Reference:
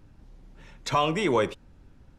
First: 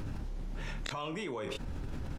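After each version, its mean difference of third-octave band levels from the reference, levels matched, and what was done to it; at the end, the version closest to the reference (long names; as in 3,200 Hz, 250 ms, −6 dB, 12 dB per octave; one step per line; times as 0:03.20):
16.0 dB: gate with flip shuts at −32 dBFS, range −38 dB
double-tracking delay 28 ms −9 dB
envelope flattener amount 100%
level +7.5 dB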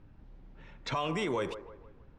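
4.5 dB: low-pass that shuts in the quiet parts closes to 3,000 Hz, open at −19 dBFS
brickwall limiter −21.5 dBFS, peak gain reduction 7.5 dB
delay with a band-pass on its return 159 ms, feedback 42%, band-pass 750 Hz, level −11 dB
level −2.5 dB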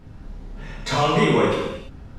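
7.5 dB: brickwall limiter −24 dBFS, peak gain reduction 10 dB
high-shelf EQ 4,900 Hz −7.5 dB
reverb whose tail is shaped and stops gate 370 ms falling, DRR −6.5 dB
level +7 dB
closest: second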